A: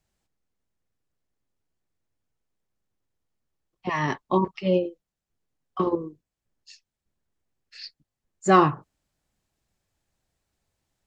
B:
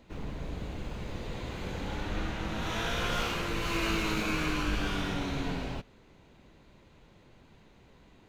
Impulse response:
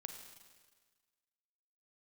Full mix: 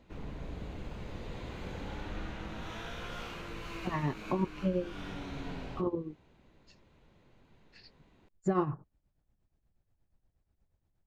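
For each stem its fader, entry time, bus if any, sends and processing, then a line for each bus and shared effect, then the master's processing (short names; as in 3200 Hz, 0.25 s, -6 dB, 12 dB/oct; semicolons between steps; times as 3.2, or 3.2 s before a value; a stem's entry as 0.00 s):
-3.0 dB, 0.00 s, no send, tilt -3 dB/oct; tremolo triangle 8.4 Hz, depth 80%
-10.5 dB, 0.00 s, send -4.5 dB, vocal rider within 4 dB 0.5 s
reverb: on, RT60 1.5 s, pre-delay 35 ms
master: high shelf 4300 Hz -5.5 dB; compressor 2:1, threshold -32 dBFS, peak gain reduction 10 dB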